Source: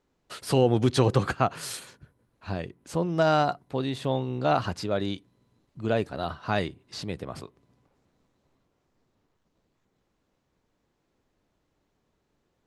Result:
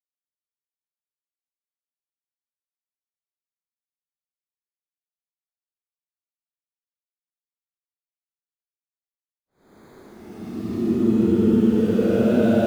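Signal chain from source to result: sample gate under -33.5 dBFS; small resonant body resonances 230/360 Hz, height 16 dB, ringing for 50 ms; Paulstretch 22×, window 0.05 s, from 5.35; gain -3 dB

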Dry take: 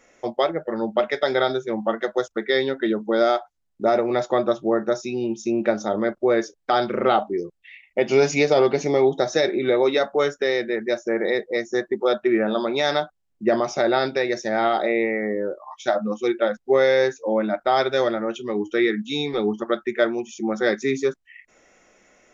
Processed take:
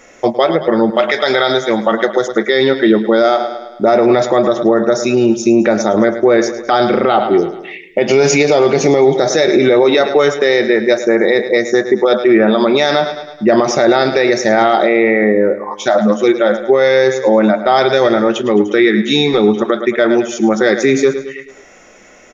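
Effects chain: 0.9–1.92 tilt shelf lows -4.5 dB, about 860 Hz; feedback echo 0.107 s, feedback 52%, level -15 dB; maximiser +15 dB; gain -1 dB

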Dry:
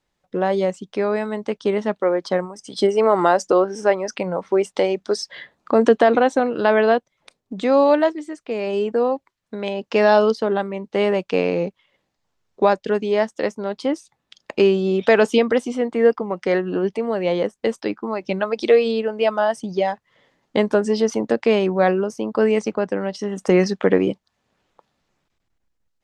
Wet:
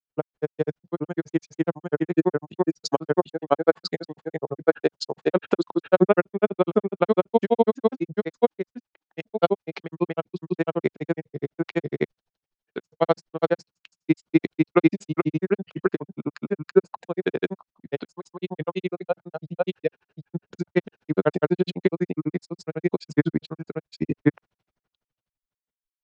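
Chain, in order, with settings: pitch shift -3.5 st; grains 51 ms, grains 12/s, spray 0.794 s, pitch spread up and down by 0 st; three-band expander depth 40%

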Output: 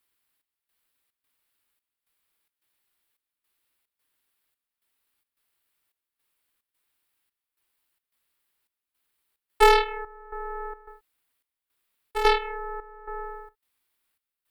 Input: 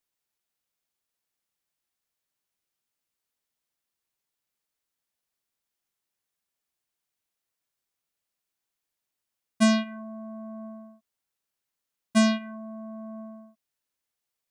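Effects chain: low shelf 420 Hz -7 dB; in parallel at -6 dB: sine folder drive 6 dB, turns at -10 dBFS; on the sum: step gate "xxx..xxx.x" 109 bpm -12 dB; ring modulator 640 Hz; fifteen-band EQ 160 Hz -9 dB, 630 Hz -4 dB, 6300 Hz -12 dB; gain +5.5 dB

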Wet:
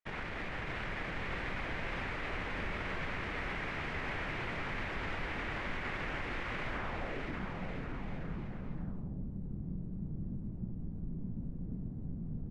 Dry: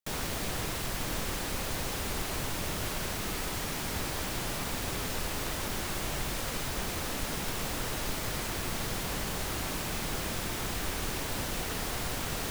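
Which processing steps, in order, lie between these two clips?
harmoniser -12 st -6 dB; limiter -26.5 dBFS, peak gain reduction 8.5 dB; low-pass sweep 2100 Hz -> 190 Hz, 6.68–7.48; bouncing-ball echo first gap 0.61 s, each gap 0.8×, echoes 5; gain -4.5 dB

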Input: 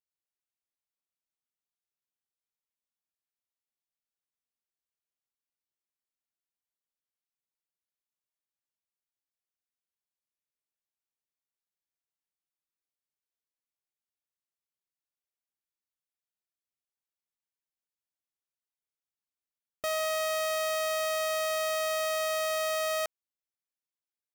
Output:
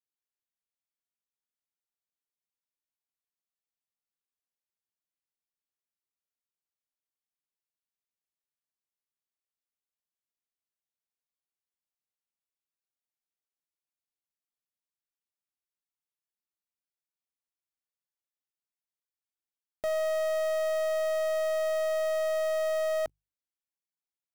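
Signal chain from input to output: one-sided fold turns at -32 dBFS; notches 50/100/150 Hz; sample leveller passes 3

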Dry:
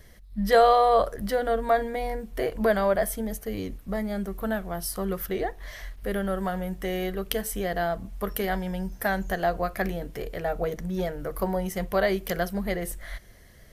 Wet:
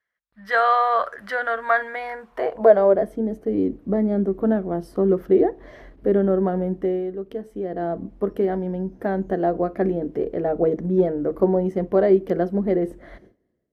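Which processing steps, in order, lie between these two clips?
gate with hold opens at -39 dBFS; AGC gain up to 13 dB; band-pass sweep 1500 Hz -> 320 Hz, 2.1–3.05; gain +4 dB

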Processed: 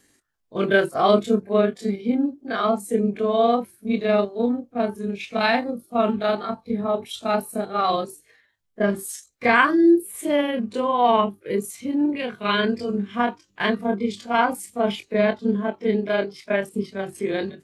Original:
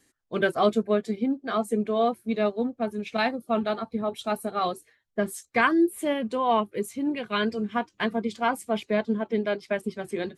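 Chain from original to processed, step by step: granular stretch 1.7×, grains 0.1 s; gain +5.5 dB

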